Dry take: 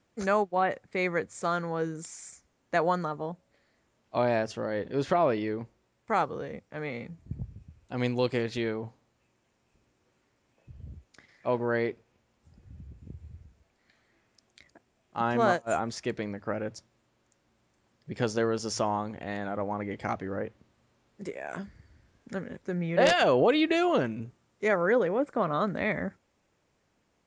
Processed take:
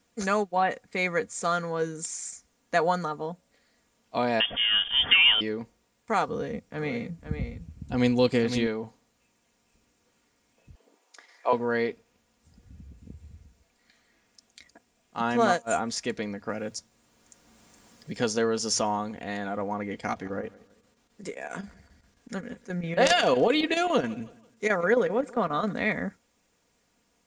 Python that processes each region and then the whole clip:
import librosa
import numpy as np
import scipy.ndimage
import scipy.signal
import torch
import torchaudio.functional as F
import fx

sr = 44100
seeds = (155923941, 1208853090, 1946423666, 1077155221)

y = fx.chain(x, sr, fx.law_mismatch(coded='mu'),
    fx.high_shelf(hz=2200.0, db=11.5),
    fx.freq_invert(carrier_hz=3400), at=(4.4, 5.41))
y = fx.chain(y, sr, fx.low_shelf(hz=330.0, db=8.0),
    fx.echo_single(ms=507, db=-9.0), at=(6.28, 8.67))
y = fx.chain(y, sr, fx.steep_highpass(hz=320.0, slope=36),
    fx.peak_eq(hz=900.0, db=8.5, octaves=0.9), at=(10.75, 11.53))
y = fx.chain(y, sr, fx.bass_treble(bass_db=1, treble_db=6),
    fx.band_squash(depth_pct=40), at=(16.49, 18.17))
y = fx.chain(y, sr, fx.chopper(hz=7.5, depth_pct=60, duty_pct=80),
    fx.echo_feedback(ms=164, feedback_pct=39, wet_db=-21.5), at=(19.9, 25.73))
y = fx.high_shelf(y, sr, hz=4200.0, db=11.0)
y = y + 0.44 * np.pad(y, (int(4.2 * sr / 1000.0), 0))[:len(y)]